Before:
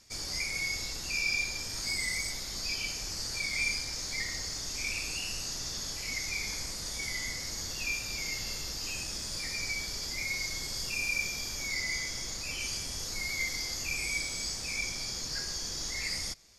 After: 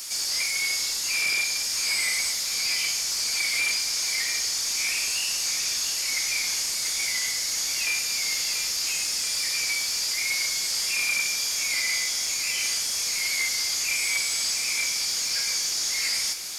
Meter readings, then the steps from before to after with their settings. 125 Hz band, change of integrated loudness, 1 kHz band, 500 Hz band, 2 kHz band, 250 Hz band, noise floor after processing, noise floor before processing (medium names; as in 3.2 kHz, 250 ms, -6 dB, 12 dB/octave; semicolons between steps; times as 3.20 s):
no reading, +9.0 dB, +6.0 dB, +0.5 dB, +6.5 dB, -4.5 dB, -28 dBFS, -39 dBFS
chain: one-bit delta coder 64 kbps, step -41 dBFS; tilt EQ +4 dB/octave; on a send: filtered feedback delay 684 ms, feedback 73%, low-pass 4.2 kHz, level -8 dB; on the sum: trim +1.5 dB